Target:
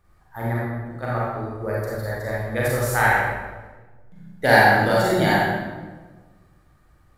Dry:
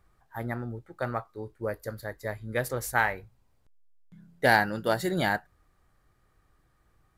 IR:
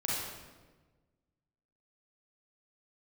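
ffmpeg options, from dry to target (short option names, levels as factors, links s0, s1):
-filter_complex "[0:a]asplit=3[s0][s1][s2];[s0]afade=t=out:st=0.57:d=0.02[s3];[s1]acompressor=threshold=0.00891:ratio=6,afade=t=in:st=0.57:d=0.02,afade=t=out:st=1.02:d=0.02[s4];[s2]afade=t=in:st=1.02:d=0.02[s5];[s3][s4][s5]amix=inputs=3:normalize=0[s6];[1:a]atrim=start_sample=2205[s7];[s6][s7]afir=irnorm=-1:irlink=0,volume=1.26"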